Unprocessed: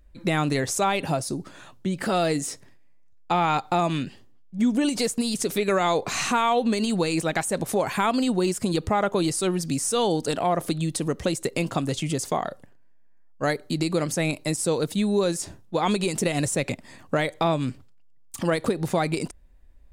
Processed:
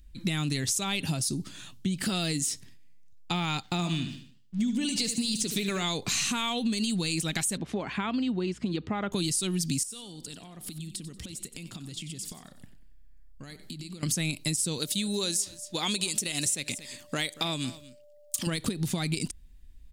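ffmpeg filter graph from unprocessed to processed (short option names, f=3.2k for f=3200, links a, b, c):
-filter_complex "[0:a]asettb=1/sr,asplit=3[a][b][c];[a]atrim=end=3.634[d];[b]atrim=start=3.63:end=5.83,asetpts=PTS-STARTPTS,afade=t=in:d=0.004:c=qsin,afade=t=out:st=2.196:d=0.004:c=qsin,aeval=exprs='sgn(val(0))*max(abs(val(0))-0.00251,0)':c=same,equalizer=f=12k:t=o:w=0.48:g=-9.5,aecho=1:1:74|148|222|296:0.316|0.126|0.0506|0.0202,atrim=end_sample=97020[e];[c]atrim=start=5.826[f];[d][e]acrossfade=d=0.004:c1=hsin:c2=qsin[g];[g][f]acrossfade=d=0.004:c1=qsin:c2=hsin,asettb=1/sr,asplit=3[h][i][j];[h]atrim=end=7.574[k];[i]atrim=start=7.57:end=9.12,asetpts=PTS-STARTPTS,afade=t=in:d=0.004:c=qsin,afade=t=out:st=1.546:d=0.004:c=qsin,highpass=220,lowpass=2k,aeval=exprs='val(0)+0.00141*(sin(2*PI*60*n/s)+sin(2*PI*2*60*n/s)/2+sin(2*PI*3*60*n/s)/3+sin(2*PI*4*60*n/s)/4+sin(2*PI*5*60*n/s)/5)':c=same[l];[j]atrim=start=9.116[m];[k][l]acrossfade=d=0.004:c1=hsin:c2=qsin[n];[n][m]acrossfade=d=0.004:c1=qsin:c2=hsin,asettb=1/sr,asplit=3[o][p][q];[o]atrim=end=9.834[r];[p]atrim=start=9.83:end=14.03,asetpts=PTS-STARTPTS,afade=t=in:d=0.004:c=qsin,afade=t=out:st=4.196:d=0.004:c=qsin,acompressor=threshold=-38dB:ratio=12:attack=3.2:release=140:knee=1:detection=peak,bandreject=f=6.2k:w=9.7,asplit=4[s][t][u][v];[t]adelay=93,afreqshift=33,volume=-13dB[w];[u]adelay=186,afreqshift=66,volume=-22.6dB[x];[v]adelay=279,afreqshift=99,volume=-32.3dB[y];[s][w][x][y]amix=inputs=4:normalize=0,atrim=end_sample=185220[z];[q]atrim=start=14.026[aa];[r][z]acrossfade=d=0.004:c1=hsin:c2=qsin[ab];[ab][aa]acrossfade=d=0.004:c1=qsin:c2=hsin,asettb=1/sr,asplit=3[ac][ad][ae];[ac]atrim=end=14.784[af];[ad]atrim=start=14.78:end=18.47,asetpts=PTS-STARTPTS,afade=t=in:d=0.004:c=qsin,afade=t=out:st=3.686:d=0.004:c=qsin,bass=f=250:g=-11,treble=f=4k:g=4,aecho=1:1:232:0.106,atrim=end_sample=162729,aeval=exprs='val(0)+0.00794*sin(2*PI*590*n/s)':c=same[ag];[ae]atrim=start=18.466[ah];[af][ag]acrossfade=d=0.004:c1=hsin:c2=qsin[ai];[ai][ah]acrossfade=d=0.004:c1=qsin:c2=hsin,firequalizer=gain_entry='entry(200,0);entry(520,-15);entry(3100,4)':delay=0.05:min_phase=1,acompressor=threshold=-28dB:ratio=6,volume=2.5dB"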